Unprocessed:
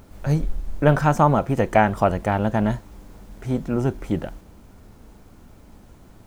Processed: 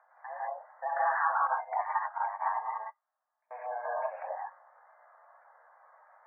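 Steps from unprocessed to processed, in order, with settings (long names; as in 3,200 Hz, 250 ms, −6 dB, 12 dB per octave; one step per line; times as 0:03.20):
single-sideband voice off tune +240 Hz 470–2,000 Hz
brickwall limiter −15 dBFS, peak gain reduction 11 dB
gate on every frequency bin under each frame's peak −15 dB strong
reverb whose tail is shaped and stops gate 220 ms rising, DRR −6.5 dB
0:01.47–0:03.51: expander for the loud parts 2.5 to 1, over −37 dBFS
level −8.5 dB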